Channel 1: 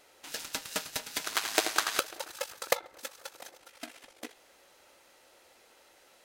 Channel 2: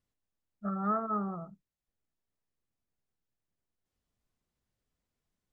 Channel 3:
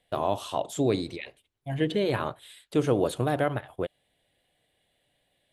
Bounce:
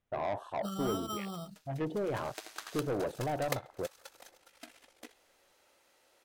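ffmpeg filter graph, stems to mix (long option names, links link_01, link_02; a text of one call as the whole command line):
ffmpeg -i stem1.wav -i stem2.wav -i stem3.wav -filter_complex "[0:a]adelay=800,volume=-7.5dB[link_01];[1:a]acrusher=samples=10:mix=1:aa=0.000001,acompressor=threshold=-37dB:ratio=6,volume=1dB,asplit=2[link_02][link_03];[2:a]afwtdn=0.0141,equalizer=frequency=740:width=1.5:gain=5,asoftclip=type=tanh:threshold=-22dB,volume=-6dB[link_04];[link_03]apad=whole_len=310860[link_05];[link_01][link_05]sidechaincompress=threshold=-59dB:ratio=16:attack=16:release=1300[link_06];[link_06][link_02][link_04]amix=inputs=3:normalize=0" out.wav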